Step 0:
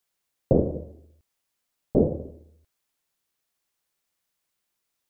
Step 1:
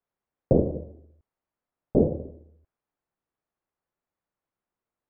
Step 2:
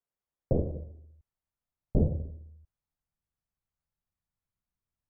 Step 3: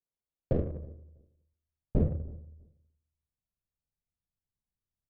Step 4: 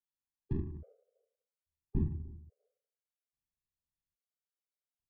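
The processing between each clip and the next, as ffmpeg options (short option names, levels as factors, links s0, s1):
-af "lowpass=1200"
-af "asubboost=boost=10:cutoff=130,volume=0.398"
-filter_complex "[0:a]adynamicsmooth=sensitivity=5.5:basefreq=820,asplit=2[s0][s1];[s1]adelay=323,lowpass=f=920:p=1,volume=0.0708,asplit=2[s2][s3];[s3]adelay=323,lowpass=f=920:p=1,volume=0.19[s4];[s0][s2][s4]amix=inputs=3:normalize=0,volume=0.841"
-af "afftfilt=real='re*gt(sin(2*PI*0.6*pts/sr)*(1-2*mod(floor(b*sr/1024/400),2)),0)':imag='im*gt(sin(2*PI*0.6*pts/sr)*(1-2*mod(floor(b*sr/1024/400),2)),0)':win_size=1024:overlap=0.75,volume=0.562"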